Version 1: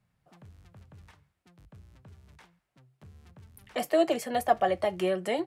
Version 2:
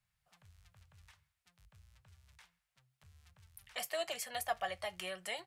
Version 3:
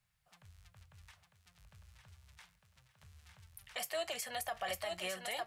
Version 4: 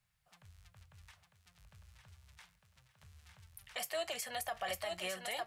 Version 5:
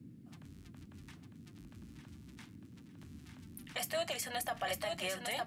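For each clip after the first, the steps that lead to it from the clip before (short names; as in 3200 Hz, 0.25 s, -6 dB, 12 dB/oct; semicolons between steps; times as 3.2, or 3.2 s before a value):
passive tone stack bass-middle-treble 10-0-10
thinning echo 0.903 s, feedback 35%, high-pass 150 Hz, level -6 dB; limiter -32 dBFS, peak gain reduction 10 dB; gain +3 dB
nothing audible
band noise 92–290 Hz -56 dBFS; gain +2 dB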